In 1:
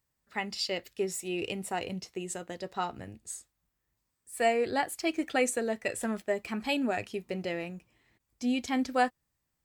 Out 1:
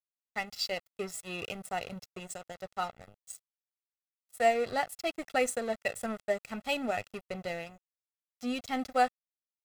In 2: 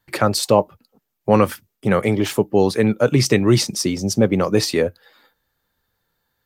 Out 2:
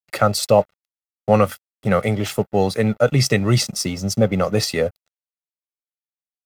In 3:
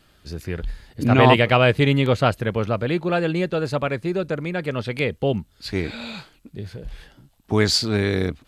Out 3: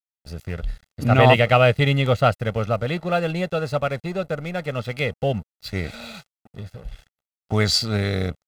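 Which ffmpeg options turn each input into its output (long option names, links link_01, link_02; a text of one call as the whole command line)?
ffmpeg -i in.wav -af "aeval=exprs='sgn(val(0))*max(abs(val(0))-0.00891,0)':channel_layout=same,aecho=1:1:1.5:0.56,volume=-1dB" out.wav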